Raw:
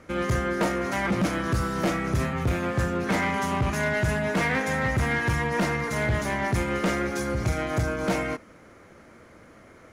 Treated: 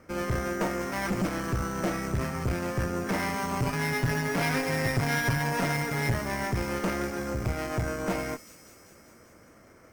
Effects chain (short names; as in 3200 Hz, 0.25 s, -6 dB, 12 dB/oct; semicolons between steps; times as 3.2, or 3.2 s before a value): 3.62–6.14 comb 7.2 ms, depth 92%; careless resampling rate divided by 6×, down filtered, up hold; high shelf 4700 Hz -5.5 dB; thin delay 0.196 s, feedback 71%, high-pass 4500 Hz, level -6.5 dB; tube stage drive 19 dB, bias 0.7